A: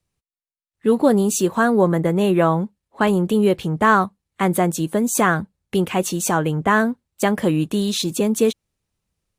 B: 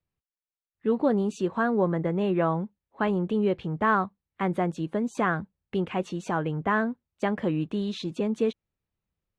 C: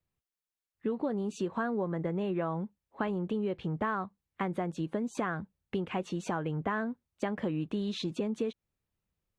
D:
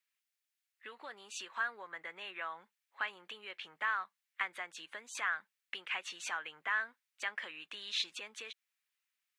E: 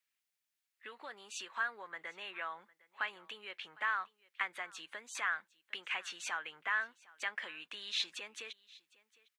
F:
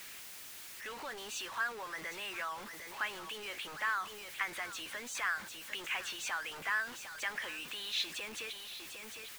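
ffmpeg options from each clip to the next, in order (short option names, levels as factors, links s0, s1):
-af "lowpass=2900,volume=0.398"
-af "acompressor=threshold=0.0355:ratio=6"
-af "highpass=f=1900:t=q:w=1.5,volume=1.5"
-af "aecho=1:1:756:0.0708"
-af "aeval=exprs='val(0)+0.5*0.00944*sgn(val(0))':c=same,volume=0.891"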